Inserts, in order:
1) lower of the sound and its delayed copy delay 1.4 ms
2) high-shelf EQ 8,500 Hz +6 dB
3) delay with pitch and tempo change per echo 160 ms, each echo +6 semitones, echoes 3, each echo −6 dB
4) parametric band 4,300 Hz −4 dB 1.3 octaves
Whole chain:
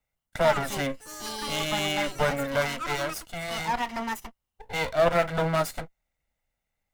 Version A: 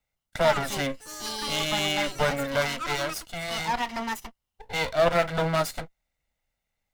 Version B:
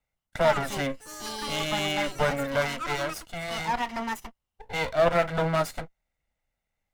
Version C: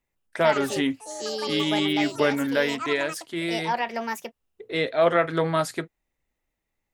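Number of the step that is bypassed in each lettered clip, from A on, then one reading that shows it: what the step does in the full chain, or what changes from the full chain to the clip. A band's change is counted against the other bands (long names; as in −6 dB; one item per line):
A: 4, 4 kHz band +3.0 dB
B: 2, 8 kHz band −2.0 dB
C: 1, 250 Hz band +6.5 dB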